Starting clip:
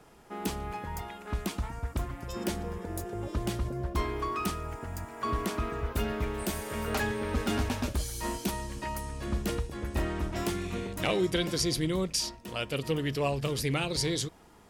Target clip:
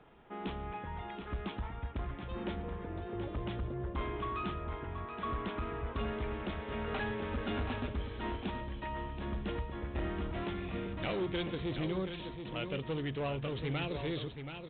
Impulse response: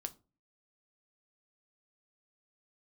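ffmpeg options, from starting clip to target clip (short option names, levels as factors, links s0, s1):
-af "aresample=8000,asoftclip=type=tanh:threshold=0.0473,aresample=44100,aecho=1:1:728:0.398,volume=0.668"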